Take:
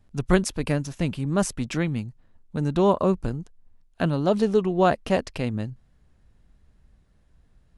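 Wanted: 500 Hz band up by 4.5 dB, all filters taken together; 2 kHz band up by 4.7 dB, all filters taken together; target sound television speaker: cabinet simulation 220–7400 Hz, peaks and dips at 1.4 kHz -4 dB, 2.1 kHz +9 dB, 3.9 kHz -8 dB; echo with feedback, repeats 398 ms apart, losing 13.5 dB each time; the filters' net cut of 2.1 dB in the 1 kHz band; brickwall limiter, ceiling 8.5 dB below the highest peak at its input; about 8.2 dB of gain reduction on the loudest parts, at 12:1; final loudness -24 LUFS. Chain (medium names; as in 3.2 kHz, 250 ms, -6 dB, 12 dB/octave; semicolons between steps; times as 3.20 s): peaking EQ 500 Hz +7.5 dB; peaking EQ 1 kHz -7.5 dB; peaking EQ 2 kHz +4.5 dB; compression 12:1, threshold -19 dBFS; peak limiter -18 dBFS; cabinet simulation 220–7400 Hz, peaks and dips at 1.4 kHz -4 dB, 2.1 kHz +9 dB, 3.9 kHz -8 dB; feedback delay 398 ms, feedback 21%, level -13.5 dB; trim +7 dB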